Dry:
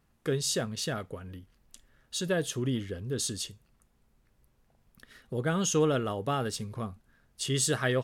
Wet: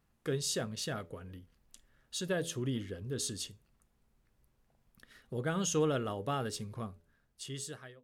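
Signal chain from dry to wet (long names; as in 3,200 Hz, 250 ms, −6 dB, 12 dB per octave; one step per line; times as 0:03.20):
fade-out on the ending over 1.25 s
hum removal 83.57 Hz, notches 7
level −4.5 dB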